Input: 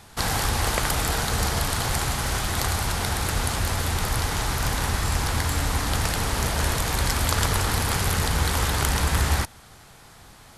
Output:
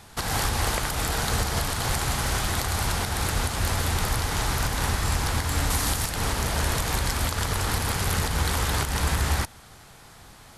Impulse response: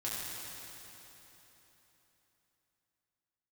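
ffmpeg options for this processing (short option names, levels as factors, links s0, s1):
-filter_complex "[0:a]asettb=1/sr,asplit=3[s0][s1][s2];[s0]atrim=end=5.704[s3];[s1]atrim=start=5.7:end=6.1,asetpts=PTS-STARTPTS,afade=t=in:d=0.004:c=qsin,afade=t=out:st=0.396:d=0.004:c=qsin,highshelf=f=5100:g=9[s4];[s2]atrim=start=6.096[s5];[s3][s4]acrossfade=d=0.004:c1=hsin:c2=qsin[s6];[s6][s5]acrossfade=d=0.004:c1=qsin:c2=hsin,alimiter=limit=0.224:level=0:latency=1:release=167"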